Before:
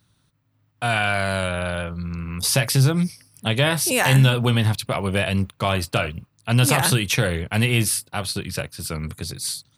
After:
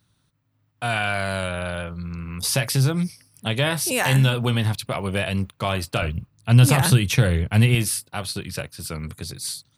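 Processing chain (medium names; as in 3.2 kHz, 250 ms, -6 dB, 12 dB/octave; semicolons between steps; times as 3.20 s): 6.02–7.75 s: bass shelf 190 Hz +11 dB; trim -2.5 dB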